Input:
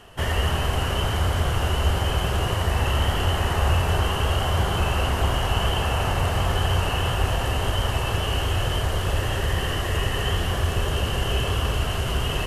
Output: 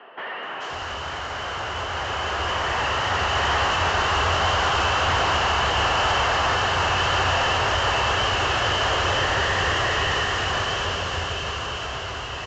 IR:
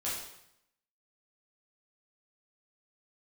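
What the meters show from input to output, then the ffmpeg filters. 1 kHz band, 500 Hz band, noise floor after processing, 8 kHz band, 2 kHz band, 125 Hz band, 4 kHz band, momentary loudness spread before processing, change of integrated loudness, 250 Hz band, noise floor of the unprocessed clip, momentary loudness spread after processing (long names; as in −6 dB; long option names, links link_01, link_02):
+6.0 dB, +1.0 dB, −32 dBFS, +1.0 dB, +7.0 dB, −8.0 dB, +4.0 dB, 2 LU, +1.5 dB, −4.0 dB, −26 dBFS, 10 LU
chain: -filter_complex "[0:a]highpass=63,acrossover=split=110|950[link_01][link_02][link_03];[link_02]alimiter=level_in=5.5dB:limit=-24dB:level=0:latency=1,volume=-5.5dB[link_04];[link_01][link_04][link_03]amix=inputs=3:normalize=0,asplit=2[link_05][link_06];[link_06]highpass=frequency=720:poles=1,volume=23dB,asoftclip=type=tanh:threshold=-11dB[link_07];[link_05][link_07]amix=inputs=2:normalize=0,lowpass=frequency=2300:poles=1,volume=-6dB,volume=18.5dB,asoftclip=hard,volume=-18.5dB,dynaudnorm=framelen=440:gausssize=11:maxgain=10dB,acrossover=split=210|2900[link_08][link_09][link_10];[link_10]adelay=430[link_11];[link_08]adelay=530[link_12];[link_12][link_09][link_11]amix=inputs=3:normalize=0,aresample=16000,aresample=44100,volume=-8.5dB"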